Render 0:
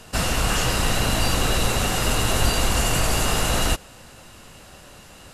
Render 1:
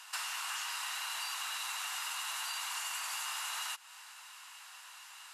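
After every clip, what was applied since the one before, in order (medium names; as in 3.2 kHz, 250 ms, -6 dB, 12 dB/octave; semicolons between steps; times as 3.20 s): elliptic high-pass 920 Hz, stop band 70 dB; compression 5:1, threshold -34 dBFS, peak gain reduction 10.5 dB; trim -3 dB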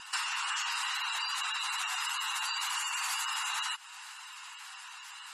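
wow and flutter 25 cents; spectral gate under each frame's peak -15 dB strong; trim +6.5 dB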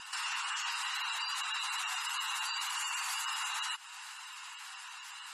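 peak limiter -27 dBFS, peak gain reduction 7 dB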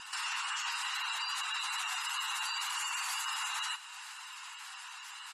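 feedback delay 61 ms, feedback 60%, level -16 dB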